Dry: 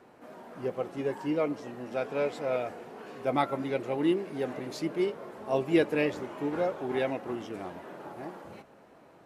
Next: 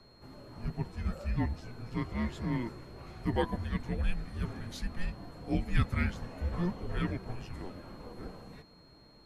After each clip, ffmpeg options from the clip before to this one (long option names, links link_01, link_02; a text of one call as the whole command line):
ffmpeg -i in.wav -af "aeval=exprs='val(0)+0.00112*sin(2*PI*4600*n/s)':channel_layout=same,afreqshift=-360,volume=-2.5dB" out.wav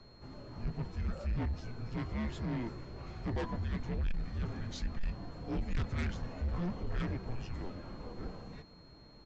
ffmpeg -i in.wav -af "aresample=16000,asoftclip=type=tanh:threshold=-33dB,aresample=44100,lowshelf=frequency=130:gain=5" out.wav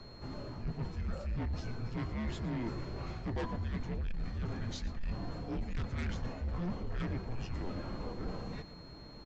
ffmpeg -i in.wav -af "areverse,acompressor=threshold=-40dB:ratio=6,areverse,aecho=1:1:114:0.141,volume=6dB" out.wav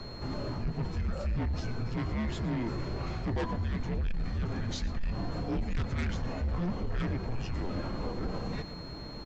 ffmpeg -i in.wav -af "alimiter=level_in=10.5dB:limit=-24dB:level=0:latency=1:release=95,volume=-10.5dB,volume=8.5dB" out.wav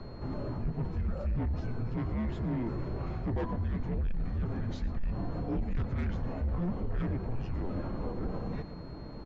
ffmpeg -i in.wav -af "lowpass=frequency=1000:poles=1" out.wav